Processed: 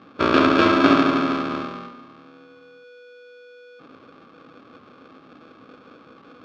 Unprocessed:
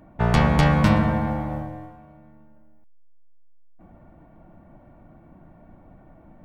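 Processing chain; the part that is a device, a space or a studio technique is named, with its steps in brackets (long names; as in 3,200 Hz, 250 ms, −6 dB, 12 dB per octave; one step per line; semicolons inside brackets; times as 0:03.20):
ring modulator pedal into a guitar cabinet (ring modulator with a square carrier 490 Hz; loudspeaker in its box 77–4,200 Hz, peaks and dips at 260 Hz +10 dB, 700 Hz −9 dB, 1,200 Hz +9 dB, 1,900 Hz −5 dB)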